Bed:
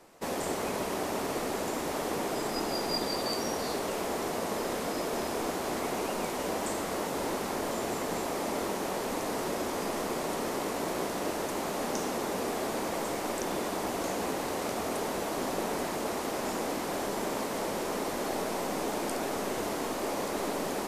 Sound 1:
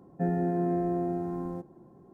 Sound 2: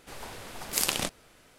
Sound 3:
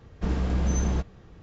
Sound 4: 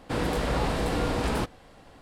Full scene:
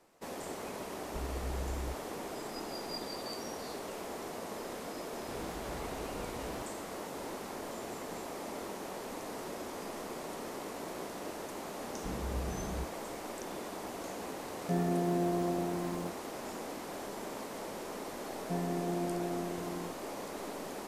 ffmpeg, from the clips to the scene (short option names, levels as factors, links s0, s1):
-filter_complex "[3:a]asplit=2[s0][s1];[1:a]asplit=2[s2][s3];[0:a]volume=0.355[s4];[s0]aecho=1:1:2.2:0.83[s5];[s1]flanger=delay=17.5:depth=5.5:speed=1.9[s6];[s2]crystalizer=i=2:c=0[s7];[s5]atrim=end=1.42,asetpts=PTS-STARTPTS,volume=0.141,afade=t=in:d=0.004:c=hsin,afade=t=out:st=1.416:d=0.004:c=hsin,adelay=920[s8];[4:a]atrim=end=2.01,asetpts=PTS-STARTPTS,volume=0.133,afade=t=in:d=0.004:c=hsin,afade=t=out:st=2.006:d=0.004:c=hsin,adelay=5180[s9];[s6]atrim=end=1.42,asetpts=PTS-STARTPTS,volume=0.335,afade=t=in:d=0.004:c=hsin,afade=t=out:st=1.416:d=0.004:c=hsin,adelay=11820[s10];[s7]atrim=end=2.13,asetpts=PTS-STARTPTS,volume=0.668,afade=t=in:d=0.004:c=hsin,afade=t=out:st=2.126:d=0.004:c=hsin,adelay=14490[s11];[s3]atrim=end=2.13,asetpts=PTS-STARTPTS,volume=0.422,afade=t=in:d=0.004:c=hsin,afade=t=out:st=2.126:d=0.004:c=hsin,adelay=18300[s12];[s4][s8][s9][s10][s11][s12]amix=inputs=6:normalize=0"